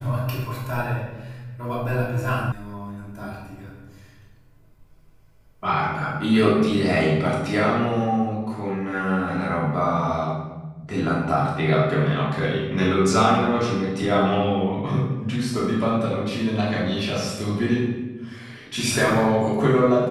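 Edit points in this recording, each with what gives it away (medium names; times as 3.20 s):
2.52 s: sound stops dead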